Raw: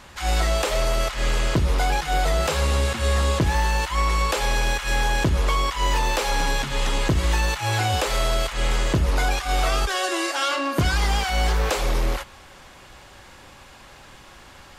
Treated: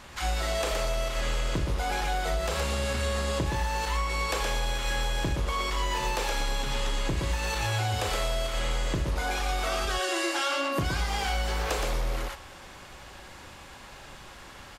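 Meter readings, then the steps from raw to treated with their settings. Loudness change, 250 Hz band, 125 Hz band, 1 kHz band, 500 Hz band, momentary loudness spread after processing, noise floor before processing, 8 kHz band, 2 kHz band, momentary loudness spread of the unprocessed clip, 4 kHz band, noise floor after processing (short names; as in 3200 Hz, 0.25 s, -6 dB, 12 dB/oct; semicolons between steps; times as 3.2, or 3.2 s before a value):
-6.5 dB, -6.5 dB, -7.5 dB, -6.0 dB, -5.0 dB, 18 LU, -47 dBFS, -5.5 dB, -6.0 dB, 3 LU, -5.0 dB, -47 dBFS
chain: on a send: loudspeakers at several distances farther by 13 m -9 dB, 41 m -4 dB; on the sum: compressor, threshold -23 dBFS, peak gain reduction 9.5 dB; gain -2 dB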